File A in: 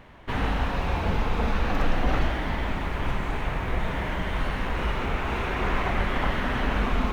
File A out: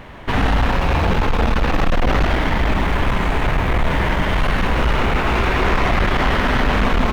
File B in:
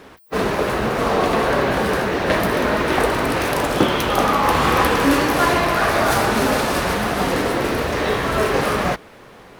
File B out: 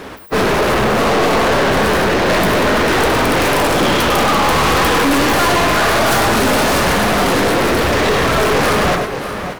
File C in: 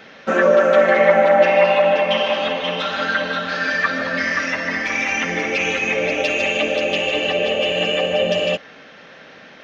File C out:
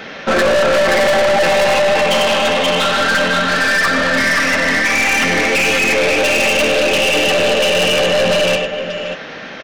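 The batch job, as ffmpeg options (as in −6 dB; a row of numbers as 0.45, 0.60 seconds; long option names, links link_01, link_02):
-af "aecho=1:1:100|583:0.335|0.168,acontrast=23,aeval=exprs='(tanh(8.91*val(0)+0.25)-tanh(0.25))/8.91':channel_layout=same,volume=7.5dB"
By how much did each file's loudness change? +9.0, +5.0, +4.5 LU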